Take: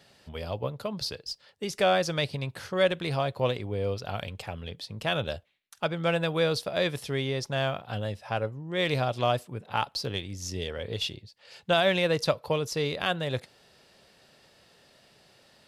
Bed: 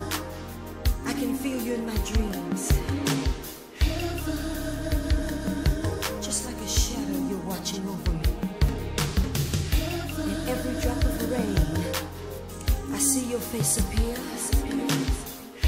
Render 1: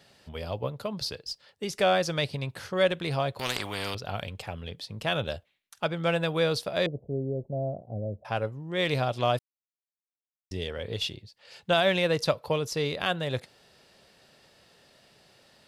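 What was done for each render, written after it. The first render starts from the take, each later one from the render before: 3.39–3.95 s: spectrum-flattening compressor 4:1; 6.86–8.25 s: elliptic low-pass 640 Hz, stop band 70 dB; 9.39–10.51 s: mute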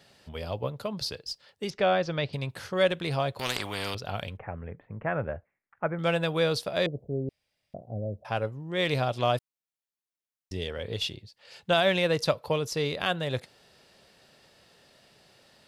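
1.70–2.33 s: distance through air 200 m; 4.37–5.99 s: steep low-pass 2.1 kHz 48 dB/octave; 7.29–7.74 s: room tone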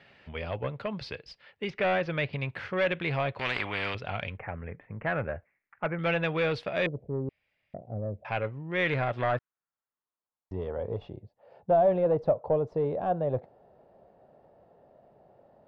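saturation -22.5 dBFS, distortion -12 dB; low-pass sweep 2.3 kHz -> 700 Hz, 8.63–11.15 s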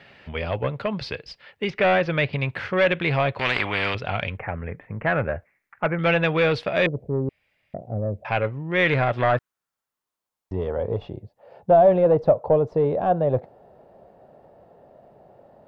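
trim +7.5 dB

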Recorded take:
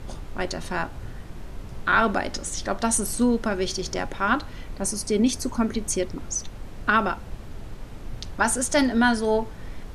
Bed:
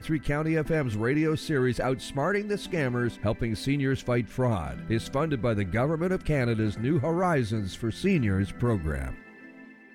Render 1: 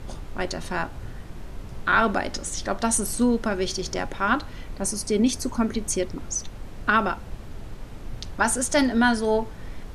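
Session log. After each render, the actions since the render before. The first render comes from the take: no audible change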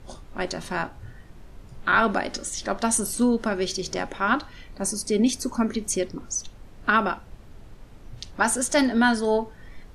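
noise print and reduce 8 dB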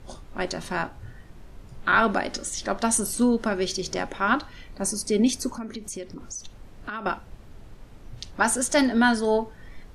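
5.52–7.06 s: compression 3:1, threshold -34 dBFS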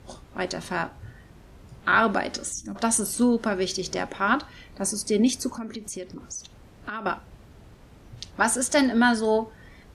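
high-pass 49 Hz; 2.53–2.76 s: time-frequency box 340–5500 Hz -21 dB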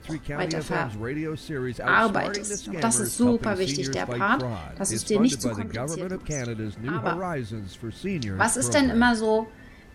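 add bed -5 dB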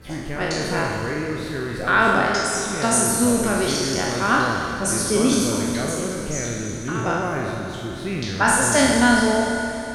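spectral sustain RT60 1.01 s; Schroeder reverb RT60 3.4 s, combs from 26 ms, DRR 3.5 dB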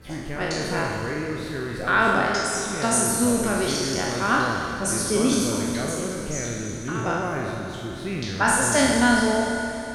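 trim -2.5 dB

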